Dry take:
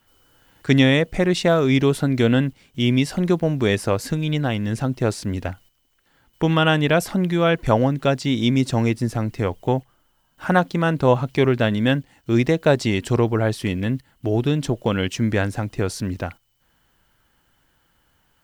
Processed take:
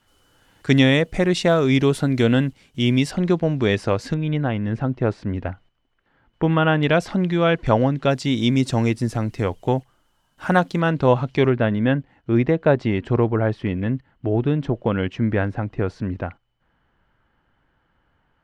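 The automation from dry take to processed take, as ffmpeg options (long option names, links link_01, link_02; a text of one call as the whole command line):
ffmpeg -i in.wav -af "asetnsamples=nb_out_samples=441:pad=0,asendcmd='3.11 lowpass f 5000;4.14 lowpass f 2100;6.83 lowpass f 4800;8.11 lowpass f 11000;10.8 lowpass f 4900;11.5 lowpass f 2000',lowpass=11000" out.wav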